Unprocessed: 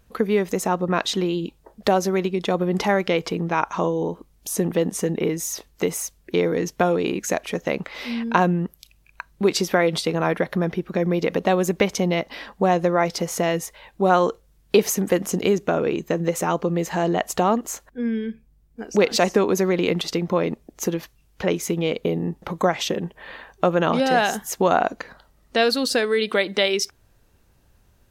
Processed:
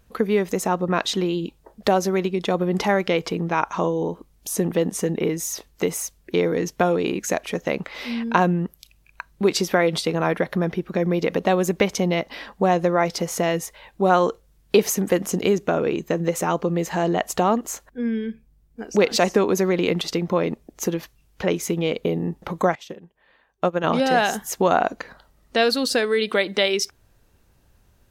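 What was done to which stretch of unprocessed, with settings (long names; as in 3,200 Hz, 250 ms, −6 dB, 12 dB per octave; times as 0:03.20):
0:22.75–0:23.84: expander for the loud parts 2.5 to 1, over −28 dBFS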